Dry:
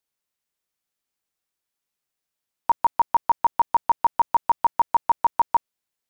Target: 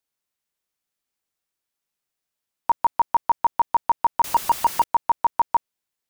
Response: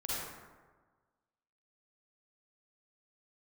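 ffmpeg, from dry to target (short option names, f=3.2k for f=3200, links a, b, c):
-filter_complex "[0:a]asettb=1/sr,asplit=3[a][b][c];[a]atrim=end=4.244[d];[b]atrim=start=4.24:end=4.84,asetpts=PTS-STARTPTS,afade=t=in:d=0.004:c=qsin,afade=t=out:st=0.596:d=0.004:c=qsin,aeval=exprs='val(0)+0.5*0.0473*sgn(val(0))':c=same[e];[c]atrim=start=4.836[f];[d][e]acrossfade=d=0.004:c1=hsin:c2=qsin[g];[g][f]acrossfade=d=0.004:c1=qsin:c2=hsin"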